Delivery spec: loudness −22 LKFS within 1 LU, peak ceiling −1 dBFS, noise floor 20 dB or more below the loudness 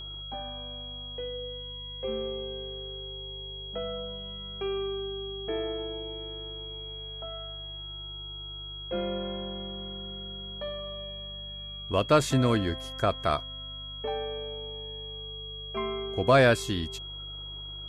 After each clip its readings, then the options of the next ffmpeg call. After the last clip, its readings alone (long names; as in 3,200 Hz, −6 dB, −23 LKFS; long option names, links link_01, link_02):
mains hum 50 Hz; hum harmonics up to 150 Hz; level of the hum −42 dBFS; interfering tone 3,300 Hz; level of the tone −39 dBFS; integrated loudness −32.0 LKFS; sample peak −10.5 dBFS; target loudness −22.0 LKFS
→ -af "bandreject=frequency=50:width_type=h:width=4,bandreject=frequency=100:width_type=h:width=4,bandreject=frequency=150:width_type=h:width=4"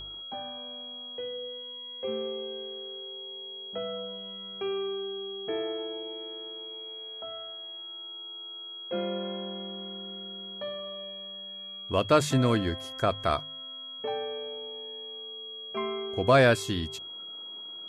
mains hum none found; interfering tone 3,300 Hz; level of the tone −39 dBFS
→ -af "bandreject=frequency=3300:width=30"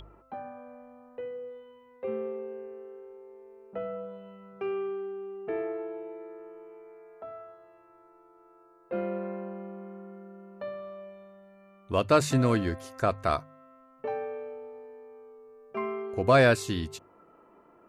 interfering tone none found; integrated loudness −30.5 LKFS; sample peak −10.5 dBFS; target loudness −22.0 LKFS
→ -af "volume=8.5dB"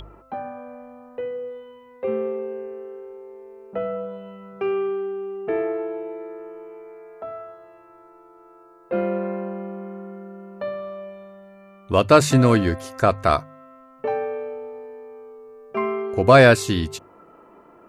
integrated loudness −22.0 LKFS; sample peak −2.0 dBFS; background noise floor −50 dBFS